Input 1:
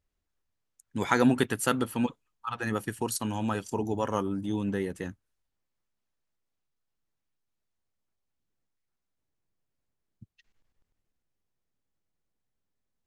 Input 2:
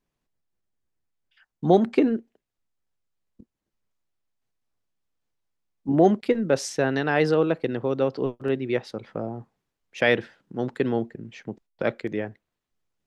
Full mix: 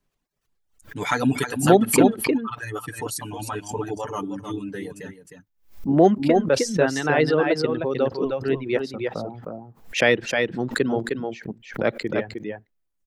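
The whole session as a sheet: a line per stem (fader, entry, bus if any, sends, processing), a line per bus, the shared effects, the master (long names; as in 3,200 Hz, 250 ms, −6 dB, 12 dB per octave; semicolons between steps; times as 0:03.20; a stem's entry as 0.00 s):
−1.0 dB, 0.00 s, no send, echo send −6.5 dB, comb filter 6.8 ms, depth 94%
+2.5 dB, 0.00 s, no send, echo send −3.5 dB, no processing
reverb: not used
echo: single-tap delay 309 ms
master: reverb reduction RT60 1.5 s; background raised ahead of every attack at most 150 dB per second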